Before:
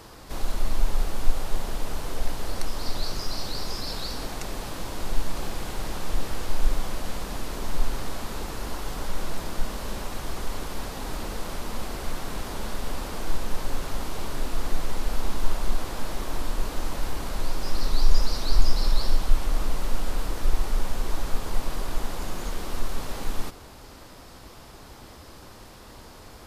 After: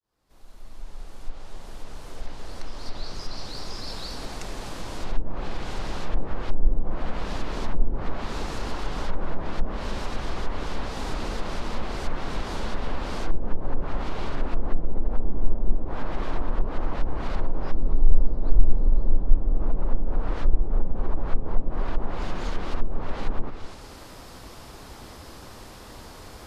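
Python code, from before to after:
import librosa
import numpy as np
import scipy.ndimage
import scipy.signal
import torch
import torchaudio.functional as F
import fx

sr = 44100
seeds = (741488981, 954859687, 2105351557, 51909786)

y = fx.fade_in_head(x, sr, length_s=7.14)
y = y + 10.0 ** (-13.0 / 20.0) * np.pad(y, (int(248 * sr / 1000.0), 0))[:len(y)]
y = fx.env_lowpass_down(y, sr, base_hz=440.0, full_db=-15.0)
y = y * librosa.db_to_amplitude(2.5)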